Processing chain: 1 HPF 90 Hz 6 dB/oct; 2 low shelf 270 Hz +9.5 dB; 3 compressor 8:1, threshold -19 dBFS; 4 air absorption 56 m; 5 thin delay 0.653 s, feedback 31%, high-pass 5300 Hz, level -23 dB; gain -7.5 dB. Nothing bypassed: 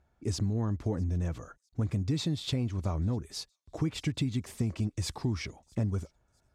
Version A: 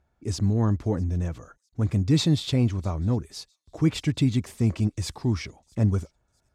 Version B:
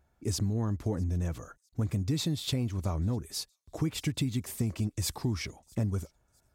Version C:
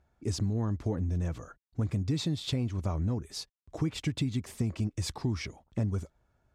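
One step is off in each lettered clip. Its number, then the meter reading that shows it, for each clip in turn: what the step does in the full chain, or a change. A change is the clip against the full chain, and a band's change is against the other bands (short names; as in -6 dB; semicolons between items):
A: 3, mean gain reduction 5.0 dB; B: 4, 8 kHz band +5.0 dB; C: 5, echo-to-direct -40.5 dB to none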